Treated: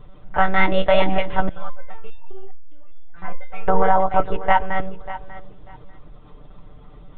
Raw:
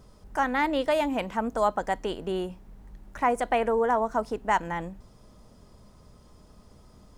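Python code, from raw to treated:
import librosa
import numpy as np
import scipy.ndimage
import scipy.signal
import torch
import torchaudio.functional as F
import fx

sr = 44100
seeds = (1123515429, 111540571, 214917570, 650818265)

y = fx.low_shelf(x, sr, hz=180.0, db=-3.5)
y = fx.lpc_monotone(y, sr, seeds[0], pitch_hz=190.0, order=16)
y = fx.low_shelf(y, sr, hz=63.0, db=11.0)
y = y + 0.59 * np.pad(y, (int(6.7 * sr / 1000.0), 0))[:len(y)]
y = fx.echo_feedback(y, sr, ms=593, feedback_pct=20, wet_db=-15.0)
y = fx.resonator_held(y, sr, hz=4.9, low_hz=170.0, high_hz=1200.0, at=(1.49, 3.68))
y = F.gain(torch.from_numpy(y), 6.0).numpy()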